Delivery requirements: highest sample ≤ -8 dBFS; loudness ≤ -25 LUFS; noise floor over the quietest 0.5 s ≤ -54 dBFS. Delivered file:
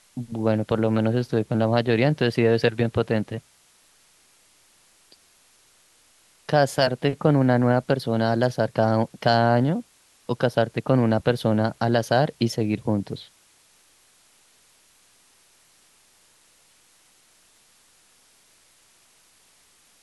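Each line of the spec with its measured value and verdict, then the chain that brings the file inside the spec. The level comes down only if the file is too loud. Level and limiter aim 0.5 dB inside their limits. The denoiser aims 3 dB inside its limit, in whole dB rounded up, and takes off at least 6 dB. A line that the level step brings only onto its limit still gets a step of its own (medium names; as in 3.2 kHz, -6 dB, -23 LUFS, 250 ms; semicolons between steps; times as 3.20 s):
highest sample -6.0 dBFS: fail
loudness -22.5 LUFS: fail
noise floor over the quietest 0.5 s -59 dBFS: pass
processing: trim -3 dB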